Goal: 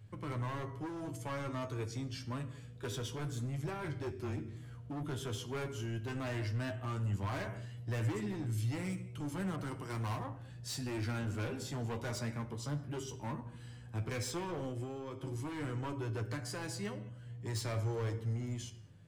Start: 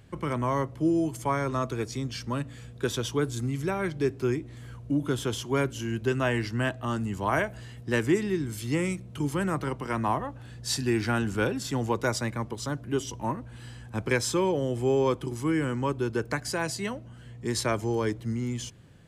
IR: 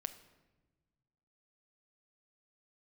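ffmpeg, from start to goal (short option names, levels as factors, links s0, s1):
-filter_complex "[0:a]asettb=1/sr,asplit=3[s0][s1][s2];[s0]atrim=end=3.844[s3];[s1]atrim=start=3.84:end=4.37,asetpts=PTS-STARTPTS,afade=t=in:d=0.004:c=qsin,afade=t=out:st=0.526:d=0.004:c=qsin,afreqshift=-21[s4];[s2]atrim=start=4.366[s5];[s3][s4]acrossfade=d=0.004:c1=hsin:c2=qsin[s6];[s6][s5]acrossfade=d=0.004:c1=qsin:c2=hsin[s7];[1:a]atrim=start_sample=2205,afade=t=out:st=0.28:d=0.01,atrim=end_sample=12789[s8];[s7][s8]afir=irnorm=-1:irlink=0,asettb=1/sr,asplit=3[s9][s10][s11];[s9]atrim=end=14.684[s12];[s10]atrim=start=14.68:end=15.23,asetpts=PTS-STARTPTS,afade=t=in:d=0.004:c=qsin,afade=t=out:st=0.546:d=0.004:c=qsin,acompressor=threshold=0.0316:ratio=8[s13];[s11]atrim=start=15.226[s14];[s12][s13]acrossfade=d=0.004:c1=hsin:c2=qsin[s15];[s15][s14]acrossfade=d=0.004:c1=qsin:c2=hsin,asoftclip=type=hard:threshold=0.0335,equalizer=f=110:t=o:w=0.5:g=11.5,flanger=delay=9.6:depth=3.8:regen=33:speed=0.12:shape=triangular,asettb=1/sr,asplit=3[s16][s17][s18];[s16]atrim=end=9.564[s19];[s17]atrim=start=9.56:end=10.24,asetpts=PTS-STARTPTS,afade=t=in:d=0.004:c=qsin,afade=t=out:st=0.676:d=0.004:c=qsin,adynamicequalizer=threshold=0.00112:dfrequency=4900:dqfactor=0.7:tfrequency=4900:tqfactor=0.7:attack=5:release=100:ratio=0.375:range=3.5:mode=boostabove:tftype=highshelf[s20];[s18]atrim=start=10.236[s21];[s19][s20]acrossfade=d=0.004:c1=hsin:c2=qsin[s22];[s22][s21]acrossfade=d=0.004:c1=qsin:c2=hsin,volume=0.668"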